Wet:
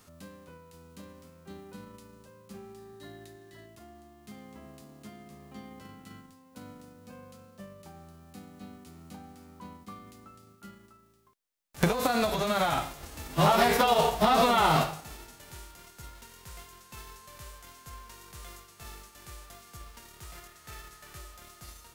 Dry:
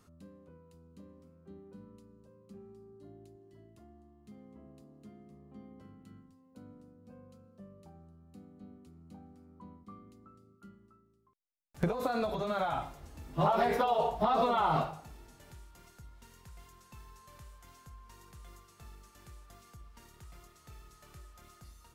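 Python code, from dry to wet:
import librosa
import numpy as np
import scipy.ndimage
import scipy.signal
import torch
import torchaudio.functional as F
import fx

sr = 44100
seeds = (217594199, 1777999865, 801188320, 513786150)

y = fx.envelope_flatten(x, sr, power=0.6)
y = fx.small_body(y, sr, hz=(1800.0, 3800.0), ring_ms=25, db=fx.line((2.77, 11.0), (3.65, 14.0)), at=(2.77, 3.65), fade=0.02)
y = fx.peak_eq(y, sr, hz=1700.0, db=5.5, octaves=0.6, at=(20.36, 21.16))
y = y * librosa.db_to_amplitude(5.5)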